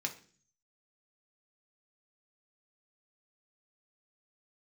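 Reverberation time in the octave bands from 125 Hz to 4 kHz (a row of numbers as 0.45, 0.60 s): 0.80, 0.65, 0.50, 0.40, 0.45, 0.50 s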